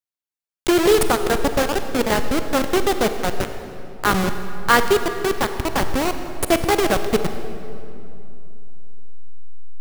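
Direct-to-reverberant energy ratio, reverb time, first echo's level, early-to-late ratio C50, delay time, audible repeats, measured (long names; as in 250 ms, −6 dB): 8.0 dB, 2.8 s, no echo audible, 8.5 dB, no echo audible, no echo audible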